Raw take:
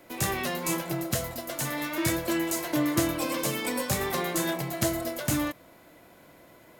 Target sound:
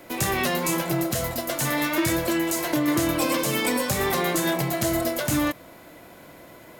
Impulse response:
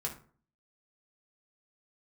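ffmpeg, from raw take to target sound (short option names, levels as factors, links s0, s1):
-filter_complex "[0:a]asettb=1/sr,asplit=3[s0][s1][s2];[s0]atrim=end=2.244[s3];[s1]atrim=start=2.24:end=2.88,asetpts=PTS-STARTPTS,afade=t=in:d=0.004:c=qsin,afade=t=out:st=0.636:d=0.004:c=qsin,acompressor=threshold=0.0355:ratio=2.5[s4];[s2]atrim=start=2.876[s5];[s3][s4]acrossfade=d=0.004:c1=hsin:c2=qsin[s6];[s6][s5]acrossfade=d=0.004:c1=qsin:c2=hsin,alimiter=limit=0.0944:level=0:latency=1:release=95,volume=2.37"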